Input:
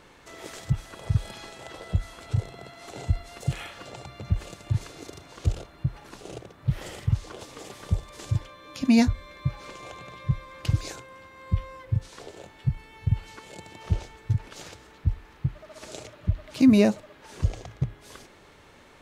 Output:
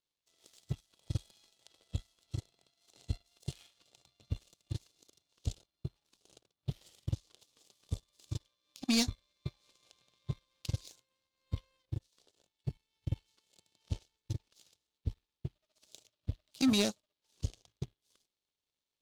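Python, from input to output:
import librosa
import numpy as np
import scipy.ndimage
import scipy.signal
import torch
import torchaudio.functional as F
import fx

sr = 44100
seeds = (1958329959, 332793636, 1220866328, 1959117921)

y = fx.power_curve(x, sr, exponent=2.0)
y = fx.high_shelf_res(y, sr, hz=2600.0, db=11.5, q=1.5)
y = 10.0 ** (-17.5 / 20.0) * np.tanh(y / 10.0 ** (-17.5 / 20.0))
y = y * 10.0 ** (-3.5 / 20.0)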